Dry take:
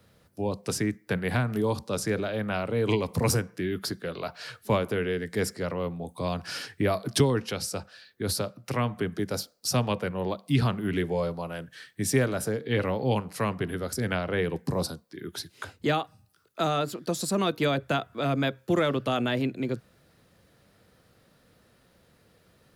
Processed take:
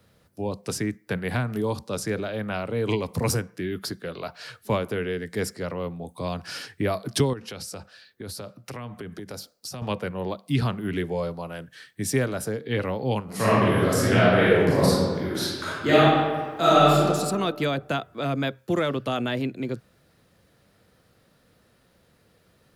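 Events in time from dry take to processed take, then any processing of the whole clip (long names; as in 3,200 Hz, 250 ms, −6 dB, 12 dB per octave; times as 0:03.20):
0:07.33–0:09.82: downward compressor 10 to 1, threshold −32 dBFS
0:13.24–0:17.02: thrown reverb, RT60 1.6 s, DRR −10 dB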